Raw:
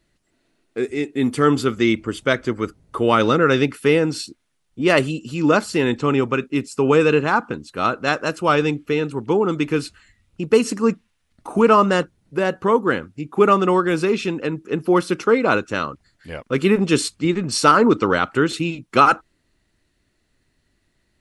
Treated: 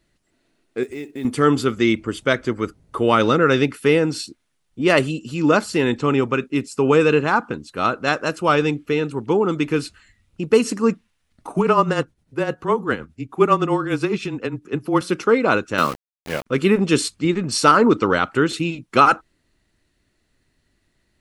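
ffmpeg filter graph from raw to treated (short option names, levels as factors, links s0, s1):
-filter_complex "[0:a]asettb=1/sr,asplit=3[s0][s1][s2];[s0]atrim=end=0.834[s3];[s1]atrim=start=0.83:end=1.25,asetpts=PTS-STARTPTS,afade=t=in:d=0.004:c=qsin,afade=t=out:st=0.416:d=0.004:c=qsin,acompressor=threshold=0.0355:ratio=3:attack=3.2:release=140:knee=1:detection=peak,acrusher=bits=7:mode=log:mix=0:aa=0.000001[s4];[s2]atrim=start=1.246[s5];[s3][s4]acrossfade=d=0.004:c1=hsin:c2=qsin[s6];[s6][s5]acrossfade=d=0.004:c1=qsin:c2=hsin,asettb=1/sr,asplit=3[s7][s8][s9];[s7]atrim=end=11.494[s10];[s8]atrim=start=11.49:end=15.01,asetpts=PTS-STARTPTS,afade=t=in:d=0.004:c=qsin,afade=t=out:st=3.516:d=0.004:c=qsin,tremolo=f=9.8:d=0.63,afreqshift=-22[s11];[s9]atrim=start=15.006[s12];[s10][s11]acrossfade=d=0.004:c1=hsin:c2=qsin[s13];[s13][s12]acrossfade=d=0.004:c1=qsin:c2=hsin,asettb=1/sr,asplit=3[s14][s15][s16];[s14]atrim=end=15.784[s17];[s15]atrim=start=15.78:end=16.46,asetpts=PTS-STARTPTS,afade=t=in:d=0.004:c=qsin,afade=t=out:st=0.676:d=0.004:c=qsin,highpass=f=120:w=0.5412,highpass=f=120:w=1.3066,aeval=exprs='val(0)*gte(abs(val(0)),0.0178)':c=same,acontrast=88[s18];[s16]atrim=start=16.456[s19];[s17][s18]acrossfade=d=0.004:c1=hsin:c2=qsin[s20];[s20][s19]acrossfade=d=0.004:c1=qsin:c2=hsin"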